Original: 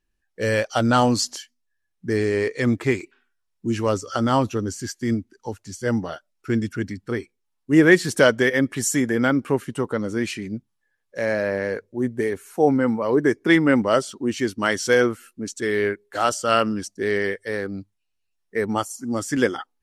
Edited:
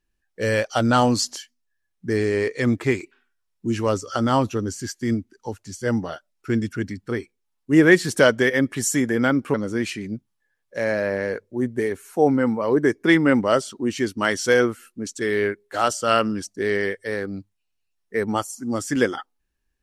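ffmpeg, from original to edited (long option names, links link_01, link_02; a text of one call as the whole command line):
ffmpeg -i in.wav -filter_complex "[0:a]asplit=2[link_01][link_02];[link_01]atrim=end=9.542[link_03];[link_02]atrim=start=9.948[link_04];[link_03][link_04]acrossfade=duration=0.004:curve1=hsin:curve2=hsin" out.wav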